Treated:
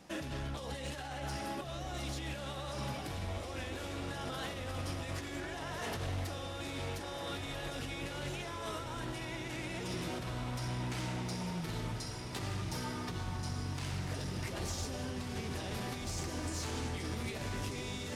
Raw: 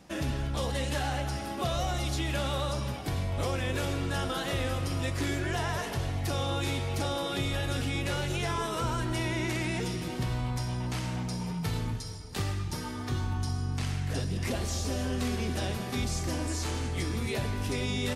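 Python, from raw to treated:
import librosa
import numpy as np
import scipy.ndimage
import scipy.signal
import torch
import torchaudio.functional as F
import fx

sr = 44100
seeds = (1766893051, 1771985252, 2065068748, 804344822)

y = fx.low_shelf(x, sr, hz=150.0, db=-6.5)
y = fx.over_compress(y, sr, threshold_db=-35.0, ratio=-0.5)
y = 10.0 ** (-29.0 / 20.0) * np.tanh(y / 10.0 ** (-29.0 / 20.0))
y = fx.echo_diffused(y, sr, ms=1571, feedback_pct=65, wet_db=-7.5)
y = fx.doppler_dist(y, sr, depth_ms=0.11)
y = y * librosa.db_to_amplitude(-3.0)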